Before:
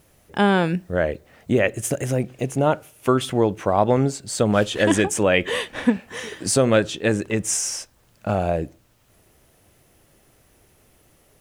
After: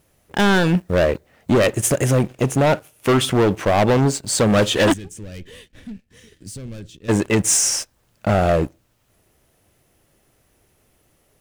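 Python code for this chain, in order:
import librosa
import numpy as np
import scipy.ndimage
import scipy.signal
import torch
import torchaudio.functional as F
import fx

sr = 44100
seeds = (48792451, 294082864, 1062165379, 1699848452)

y = fx.leveller(x, sr, passes=2)
y = np.clip(y, -10.0 ** (-12.0 / 20.0), 10.0 ** (-12.0 / 20.0))
y = fx.tone_stack(y, sr, knobs='10-0-1', at=(4.92, 7.08), fade=0.02)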